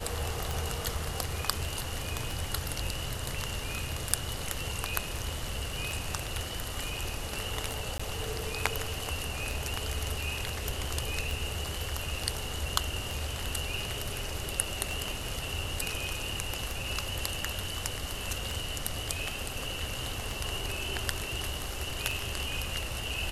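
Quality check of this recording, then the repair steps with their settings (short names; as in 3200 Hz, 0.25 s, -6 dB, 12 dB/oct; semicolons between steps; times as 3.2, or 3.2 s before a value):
tick 33 1/3 rpm
7.98–8 gap 15 ms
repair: de-click; interpolate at 7.98, 15 ms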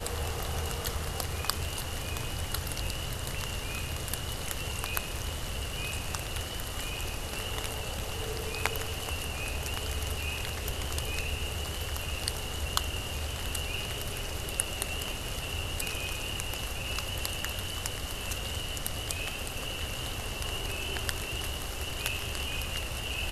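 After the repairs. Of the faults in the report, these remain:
none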